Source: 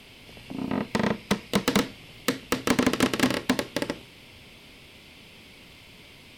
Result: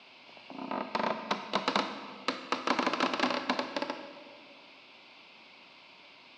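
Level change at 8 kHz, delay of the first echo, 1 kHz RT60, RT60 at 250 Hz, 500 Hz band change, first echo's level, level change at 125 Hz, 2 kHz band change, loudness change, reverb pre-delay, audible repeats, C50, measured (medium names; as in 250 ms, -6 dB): -14.5 dB, no echo, 1.7 s, 2.3 s, -6.0 dB, no echo, -16.5 dB, -4.5 dB, -6.0 dB, 30 ms, no echo, 9.5 dB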